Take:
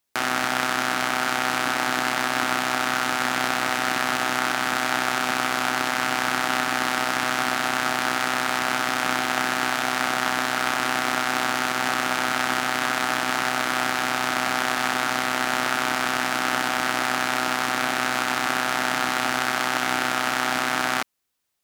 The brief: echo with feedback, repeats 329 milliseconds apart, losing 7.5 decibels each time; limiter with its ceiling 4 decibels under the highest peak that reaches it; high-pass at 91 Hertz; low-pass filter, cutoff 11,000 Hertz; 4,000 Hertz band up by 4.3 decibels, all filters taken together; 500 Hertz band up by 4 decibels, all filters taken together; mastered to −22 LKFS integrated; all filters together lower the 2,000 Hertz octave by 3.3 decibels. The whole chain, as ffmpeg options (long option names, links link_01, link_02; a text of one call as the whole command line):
ffmpeg -i in.wav -af "highpass=91,lowpass=11000,equalizer=frequency=500:width_type=o:gain=6,equalizer=frequency=2000:width_type=o:gain=-6.5,equalizer=frequency=4000:width_type=o:gain=7.5,alimiter=limit=-6.5dB:level=0:latency=1,aecho=1:1:329|658|987|1316|1645:0.422|0.177|0.0744|0.0312|0.0131,volume=1dB" out.wav